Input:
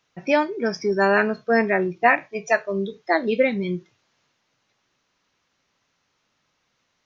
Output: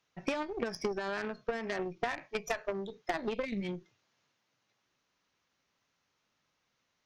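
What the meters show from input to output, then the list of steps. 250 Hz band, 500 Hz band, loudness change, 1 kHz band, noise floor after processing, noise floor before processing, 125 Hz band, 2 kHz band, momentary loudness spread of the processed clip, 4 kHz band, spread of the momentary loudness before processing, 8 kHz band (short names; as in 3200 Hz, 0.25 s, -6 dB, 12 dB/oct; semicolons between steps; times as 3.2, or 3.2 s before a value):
-13.5 dB, -14.5 dB, -15.0 dB, -15.5 dB, -80 dBFS, -72 dBFS, -12.5 dB, -16.5 dB, 3 LU, -8.0 dB, 9 LU, n/a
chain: limiter -15 dBFS, peak gain reduction 11 dB; spectral delete 3.45–3.73, 370–2000 Hz; compressor 8:1, threshold -26 dBFS, peak gain reduction 7.5 dB; added harmonics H 3 -14 dB, 6 -18 dB, 8 -25 dB, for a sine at -17.5 dBFS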